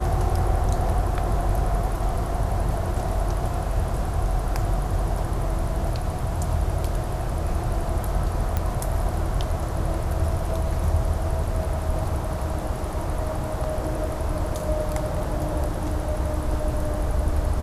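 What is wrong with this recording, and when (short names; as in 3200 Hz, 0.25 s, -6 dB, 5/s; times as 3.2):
8.57 pop -11 dBFS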